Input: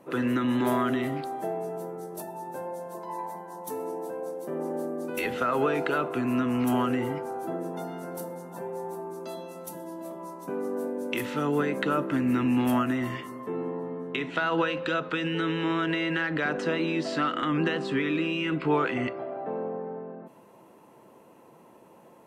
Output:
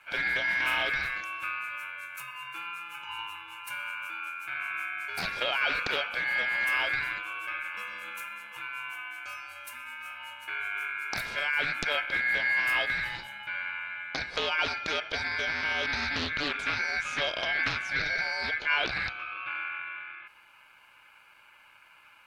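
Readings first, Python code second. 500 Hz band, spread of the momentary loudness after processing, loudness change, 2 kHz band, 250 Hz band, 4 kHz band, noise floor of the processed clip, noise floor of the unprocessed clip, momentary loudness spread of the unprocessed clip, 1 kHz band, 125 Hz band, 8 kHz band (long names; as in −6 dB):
−11.5 dB, 13 LU, −1.0 dB, +7.0 dB, −20.0 dB, +6.0 dB, −57 dBFS, −54 dBFS, 13 LU, −4.0 dB, −13.0 dB, 0.0 dB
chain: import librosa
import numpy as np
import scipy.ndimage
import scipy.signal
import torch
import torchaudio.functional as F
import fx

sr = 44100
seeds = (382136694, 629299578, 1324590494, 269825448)

y = x * np.sin(2.0 * np.pi * 1900.0 * np.arange(len(x)) / sr)
y = fx.doppler_dist(y, sr, depth_ms=0.57)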